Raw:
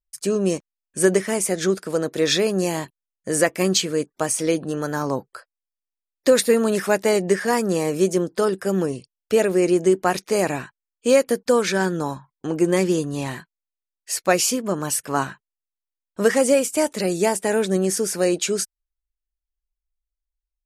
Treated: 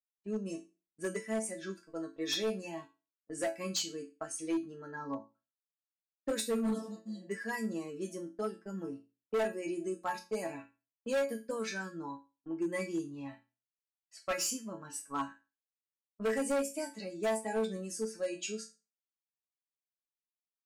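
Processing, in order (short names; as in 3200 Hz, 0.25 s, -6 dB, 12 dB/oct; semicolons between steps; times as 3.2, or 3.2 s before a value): per-bin expansion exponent 1.5; HPF 46 Hz; spectral repair 6.68–7.22, 230–3100 Hz both; gate -35 dBFS, range -32 dB; notches 60/120/180/240/300/360 Hz; low-pass opened by the level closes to 1300 Hz, open at -19 dBFS; resonator bank A3 major, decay 0.28 s; hard clip -34.5 dBFS, distortion -9 dB; gain +7 dB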